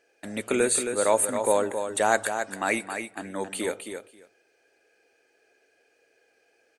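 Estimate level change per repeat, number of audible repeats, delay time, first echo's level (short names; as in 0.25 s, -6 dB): -16.5 dB, 2, 0.269 s, -7.5 dB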